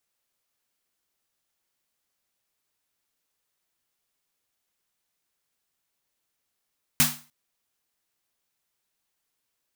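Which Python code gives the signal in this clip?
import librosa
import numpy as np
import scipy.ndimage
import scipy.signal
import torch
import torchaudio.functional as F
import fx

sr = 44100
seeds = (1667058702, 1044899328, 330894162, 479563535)

y = fx.drum_snare(sr, seeds[0], length_s=0.3, hz=150.0, second_hz=240.0, noise_db=8.5, noise_from_hz=730.0, decay_s=0.34, noise_decay_s=0.35)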